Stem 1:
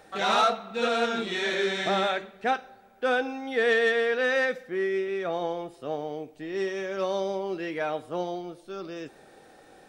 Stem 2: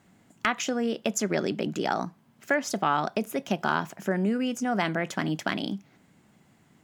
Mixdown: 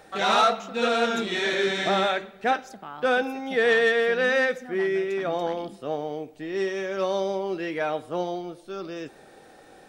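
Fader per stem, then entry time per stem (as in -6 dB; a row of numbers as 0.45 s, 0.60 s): +2.5 dB, -15.0 dB; 0.00 s, 0.00 s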